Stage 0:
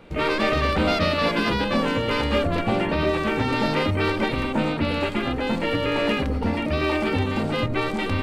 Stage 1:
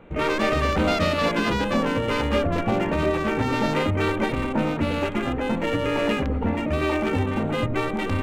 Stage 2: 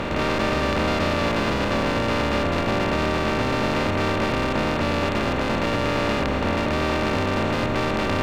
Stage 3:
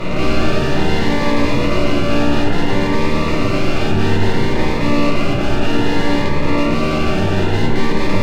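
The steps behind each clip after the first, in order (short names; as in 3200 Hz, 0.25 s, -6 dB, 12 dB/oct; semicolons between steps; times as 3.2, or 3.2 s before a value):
Wiener smoothing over 9 samples
per-bin compression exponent 0.2; gain -7 dB
shoebox room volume 190 m³, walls furnished, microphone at 4 m; cascading phaser rising 0.6 Hz; gain -2 dB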